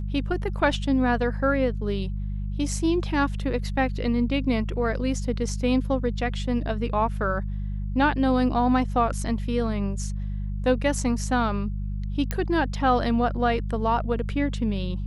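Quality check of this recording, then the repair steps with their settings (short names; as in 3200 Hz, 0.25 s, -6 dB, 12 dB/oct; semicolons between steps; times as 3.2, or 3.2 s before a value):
hum 50 Hz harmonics 4 -29 dBFS
12.31 pop -12 dBFS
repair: de-click; de-hum 50 Hz, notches 4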